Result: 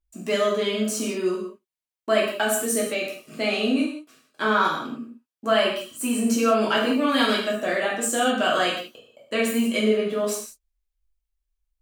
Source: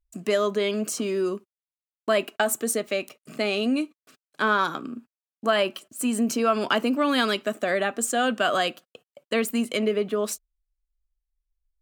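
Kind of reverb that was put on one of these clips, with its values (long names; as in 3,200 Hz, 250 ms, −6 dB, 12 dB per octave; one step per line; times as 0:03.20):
reverb whose tail is shaped and stops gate 220 ms falling, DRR −5 dB
level −4 dB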